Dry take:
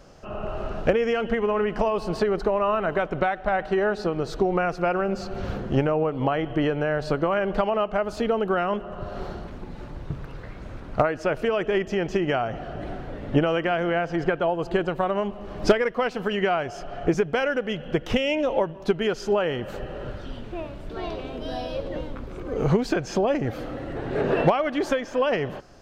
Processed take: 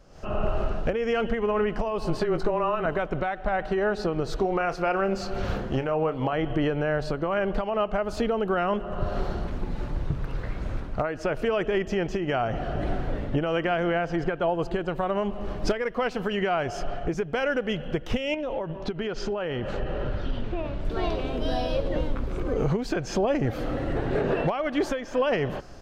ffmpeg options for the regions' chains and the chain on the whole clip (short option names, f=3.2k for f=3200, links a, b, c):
-filter_complex "[0:a]asettb=1/sr,asplit=3[a][b][c];[a]atrim=end=2.054[d];[b]atrim=start=2.05:end=2.86,asetpts=PTS-STARTPTS,afade=t=in:d=0.004:c=qsin,afade=t=out:st=0.806:d=0.004:c=qsin,afreqshift=-17,asplit=2[e][f];[f]adelay=18,volume=-9dB[g];[e][g]amix=inputs=2:normalize=0,atrim=end_sample=35721[h];[c]atrim=start=2.856[i];[d][h]acrossfade=d=0.004:c1=hsin:c2=qsin[j];[j][i]acrossfade=d=0.004:c1=qsin:c2=hsin,asettb=1/sr,asplit=3[k][l][m];[k]atrim=end=4.364[n];[l]atrim=start=4.36:end=6.33,asetpts=PTS-STARTPTS,afade=t=in:d=0.004:c=qsin,afade=t=out:st=1.966:d=0.004:c=qsin,lowshelf=f=410:g=-6.5,asplit=2[o][p];[p]adelay=31,volume=-12dB[q];[o][q]amix=inputs=2:normalize=0,atrim=end_sample=86877[r];[m]atrim=start=6.326[s];[n][r]acrossfade=d=0.004:c1=hsin:c2=qsin[t];[t][s]acrossfade=d=0.004:c1=qsin:c2=hsin,asettb=1/sr,asplit=3[u][v][w];[u]atrim=end=18.344[x];[v]atrim=start=18.34:end=20.85,asetpts=PTS-STARTPTS,afade=t=in:d=0.004:c=qsin,afade=t=out:st=2.506:d=0.004:c=qsin,lowpass=4.8k,acompressor=threshold=-29dB:ratio=12:attack=3.2:release=140:knee=1:detection=peak[y];[w]atrim=start=20.846[z];[x][y]acrossfade=d=0.004:c1=hsin:c2=qsin[aa];[aa][z]acrossfade=d=0.004:c1=qsin:c2=hsin,lowshelf=f=72:g=7.5,dynaudnorm=f=100:g=3:m=11.5dB,alimiter=limit=-7.5dB:level=0:latency=1:release=235,volume=-8dB"